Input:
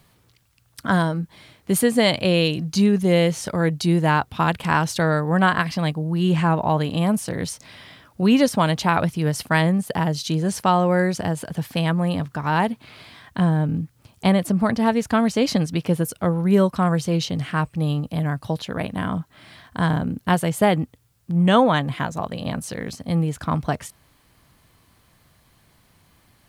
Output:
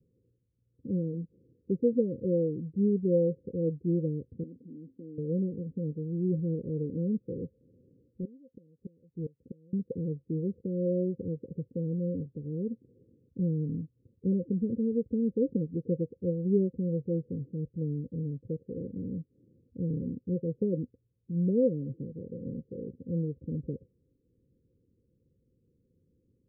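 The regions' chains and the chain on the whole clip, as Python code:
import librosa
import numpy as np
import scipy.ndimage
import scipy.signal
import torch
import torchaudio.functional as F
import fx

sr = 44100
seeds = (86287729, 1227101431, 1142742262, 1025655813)

y = fx.chain(x, sr, fx.vowel_filter(vowel='i'),
    fx.env_flatten(amount_pct=70), at=(4.43, 5.18))
y = fx.chain(y, sr, fx.gate_flip(shuts_db=-12.0, range_db=-29),
    fx.clip_hard(threshold_db=-21.0), at=(7.33, 9.73))
y = scipy.signal.sosfilt(scipy.signal.cheby1(10, 1.0, 530.0, 'lowpass', fs=sr, output='sos'), y)
y = fx.tilt_eq(y, sr, slope=2.5)
y = F.gain(torch.from_numpy(y), -3.0).numpy()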